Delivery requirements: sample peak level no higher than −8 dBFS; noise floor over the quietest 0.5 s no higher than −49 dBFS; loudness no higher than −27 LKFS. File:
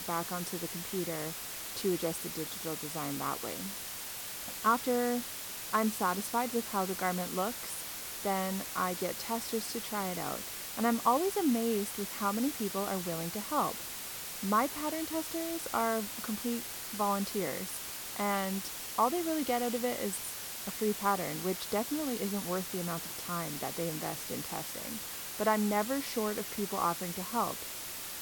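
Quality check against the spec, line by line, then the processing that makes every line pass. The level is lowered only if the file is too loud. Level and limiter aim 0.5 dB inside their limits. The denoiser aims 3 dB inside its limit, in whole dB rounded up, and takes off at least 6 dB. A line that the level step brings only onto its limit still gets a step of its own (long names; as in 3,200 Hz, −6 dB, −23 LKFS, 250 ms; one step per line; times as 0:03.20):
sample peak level −15.0 dBFS: in spec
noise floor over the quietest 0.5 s −42 dBFS: out of spec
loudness −33.5 LKFS: in spec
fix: broadband denoise 10 dB, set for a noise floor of −42 dBFS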